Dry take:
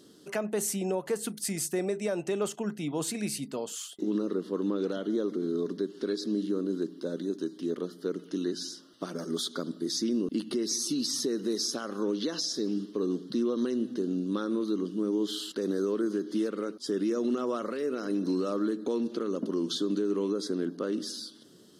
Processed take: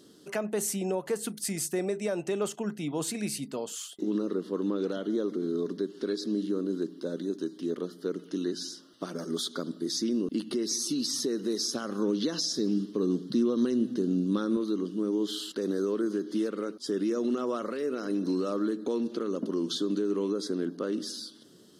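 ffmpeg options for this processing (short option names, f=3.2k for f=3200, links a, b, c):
-filter_complex "[0:a]asettb=1/sr,asplit=3[a][b][c];[a]atrim=end=11.754[d];[b]atrim=start=11.75:end=14.57,asetpts=PTS-STARTPTS,afade=t=in:d=0.004:c=qsin,afade=t=out:st=2.816:d=0.004:c=qsin,bass=f=250:g=7,treble=f=4k:g=2[e];[c]atrim=start=14.566[f];[d][e]acrossfade=d=0.004:c1=hsin:c2=qsin[g];[g][f]acrossfade=d=0.004:c1=qsin:c2=hsin"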